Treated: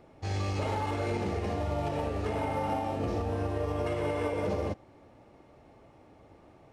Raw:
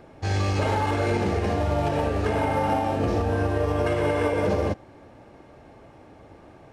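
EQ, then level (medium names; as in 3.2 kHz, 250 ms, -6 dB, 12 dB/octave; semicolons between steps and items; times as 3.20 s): band-stop 1.6 kHz, Q 11; -7.5 dB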